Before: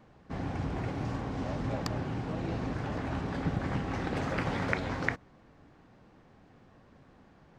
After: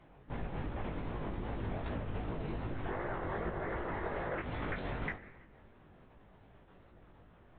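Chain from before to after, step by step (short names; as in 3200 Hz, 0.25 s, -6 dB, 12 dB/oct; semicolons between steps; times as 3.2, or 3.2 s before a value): on a send at -16 dB: reverb RT60 1.1 s, pre-delay 3 ms; on the sum: LPC vocoder at 8 kHz whisper; spectral gain 2.88–4.4, 320–2200 Hz +9 dB; compressor 10:1, threshold -33 dBFS, peak gain reduction 12 dB; chorus 2.6 Hz, delay 17 ms, depth 4.6 ms; gain +2 dB; AAC 32 kbps 22050 Hz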